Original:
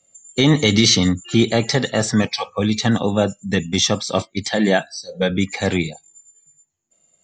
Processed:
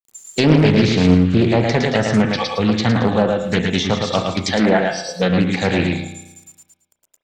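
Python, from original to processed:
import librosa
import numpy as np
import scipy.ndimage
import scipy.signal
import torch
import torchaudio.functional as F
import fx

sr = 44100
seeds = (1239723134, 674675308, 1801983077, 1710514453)

p1 = np.clip(10.0 ** (12.5 / 20.0) * x, -1.0, 1.0) / 10.0 ** (12.5 / 20.0)
p2 = x + F.gain(torch.from_numpy(p1), -5.0).numpy()
p3 = fx.quant_dither(p2, sr, seeds[0], bits=8, dither='none')
p4 = fx.high_shelf(p3, sr, hz=6100.0, db=7.5)
p5 = p4 + fx.echo_feedback(p4, sr, ms=111, feedback_pct=24, wet_db=-4.0, dry=0)
p6 = fx.rev_spring(p5, sr, rt60_s=1.0, pass_ms=(33,), chirp_ms=70, drr_db=7.5)
p7 = fx.env_lowpass_down(p6, sr, base_hz=1900.0, full_db=-7.5)
p8 = fx.doppler_dist(p7, sr, depth_ms=0.57)
y = F.gain(torch.from_numpy(p8), -2.5).numpy()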